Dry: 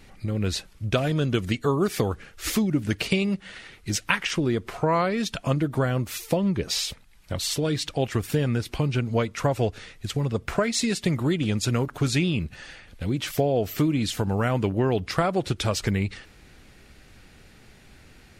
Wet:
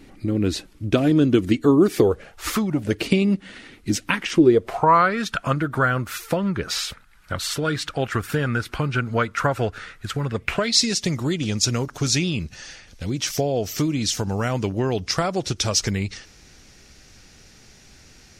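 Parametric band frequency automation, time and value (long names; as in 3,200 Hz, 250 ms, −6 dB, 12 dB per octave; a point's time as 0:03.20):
parametric band +14.5 dB 0.7 octaves
0:01.94 300 Hz
0:02.59 1,400 Hz
0:03.08 270 Hz
0:04.34 270 Hz
0:05.00 1,400 Hz
0:10.25 1,400 Hz
0:10.85 5,800 Hz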